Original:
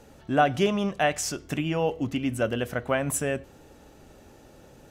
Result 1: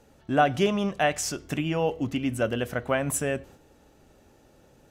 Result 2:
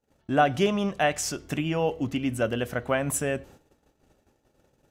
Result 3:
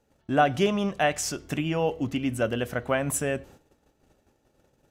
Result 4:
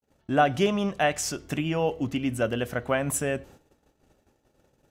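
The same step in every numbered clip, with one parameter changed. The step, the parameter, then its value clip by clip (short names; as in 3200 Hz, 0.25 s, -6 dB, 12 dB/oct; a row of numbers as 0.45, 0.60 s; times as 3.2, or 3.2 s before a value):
gate, range: -6, -31, -18, -53 dB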